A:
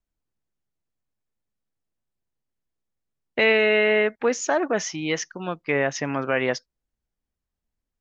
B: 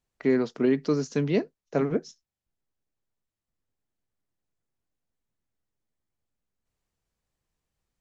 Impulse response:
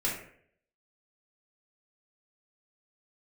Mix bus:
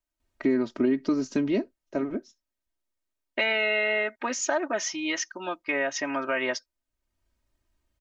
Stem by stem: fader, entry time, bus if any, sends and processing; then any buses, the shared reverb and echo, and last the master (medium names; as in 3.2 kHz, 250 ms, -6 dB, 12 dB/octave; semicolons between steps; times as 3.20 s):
-1.5 dB, 0.00 s, no send, bass shelf 310 Hz -10.5 dB
+2.5 dB, 0.20 s, no send, tone controls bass +4 dB, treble -4 dB; auto duck -24 dB, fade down 1.95 s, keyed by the first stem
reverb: none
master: comb 3.2 ms, depth 84%; compression 2.5:1, threshold -24 dBFS, peak gain reduction 9 dB